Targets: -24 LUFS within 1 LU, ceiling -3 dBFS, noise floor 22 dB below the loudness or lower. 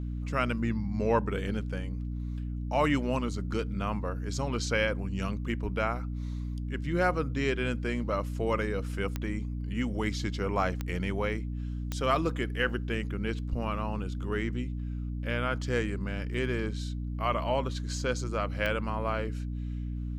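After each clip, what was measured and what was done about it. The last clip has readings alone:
clicks found 4; hum 60 Hz; highest harmonic 300 Hz; hum level -32 dBFS; loudness -31.5 LUFS; peak level -12.5 dBFS; loudness target -24.0 LUFS
-> de-click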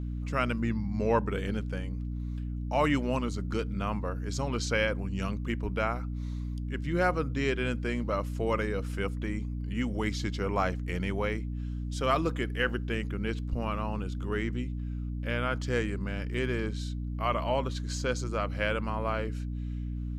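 clicks found 0; hum 60 Hz; highest harmonic 300 Hz; hum level -32 dBFS
-> hum notches 60/120/180/240/300 Hz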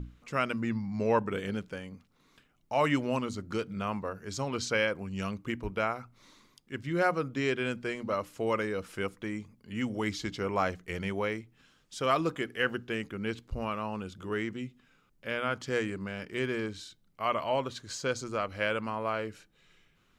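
hum not found; loudness -33.0 LUFS; peak level -13.5 dBFS; loudness target -24.0 LUFS
-> trim +9 dB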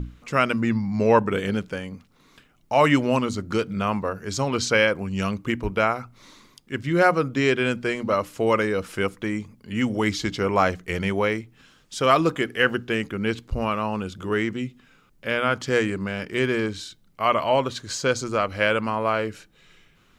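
loudness -24.0 LUFS; peak level -4.5 dBFS; noise floor -59 dBFS

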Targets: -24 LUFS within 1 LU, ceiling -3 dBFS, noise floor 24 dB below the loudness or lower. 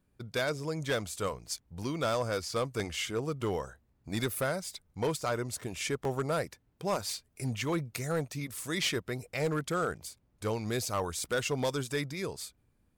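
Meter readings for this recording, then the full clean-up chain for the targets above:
clipped samples 0.9%; clipping level -24.0 dBFS; dropouts 3; longest dropout 1.7 ms; loudness -34.0 LUFS; peak level -24.0 dBFS; loudness target -24.0 LUFS
-> clip repair -24 dBFS; interpolate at 1.83/2.80/6.05 s, 1.7 ms; trim +10 dB

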